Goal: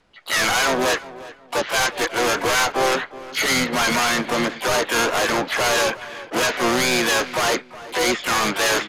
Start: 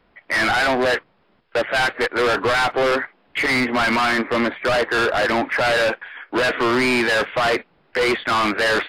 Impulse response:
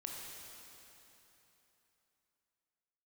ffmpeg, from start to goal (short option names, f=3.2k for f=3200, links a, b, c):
-filter_complex "[0:a]lowpass=f=6.5k:t=q:w=12,asplit=2[a][b];[b]adelay=364,lowpass=f=1.9k:p=1,volume=-16dB,asplit=2[c][d];[d]adelay=364,lowpass=f=1.9k:p=1,volume=0.28,asplit=2[e][f];[f]adelay=364,lowpass=f=1.9k:p=1,volume=0.28[g];[a][c][e][g]amix=inputs=4:normalize=0,asplit=4[h][i][j][k];[i]asetrate=29433,aresample=44100,atempo=1.49831,volume=-9dB[l];[j]asetrate=66075,aresample=44100,atempo=0.66742,volume=-7dB[m];[k]asetrate=88200,aresample=44100,atempo=0.5,volume=-8dB[n];[h][l][m][n]amix=inputs=4:normalize=0,volume=-3.5dB"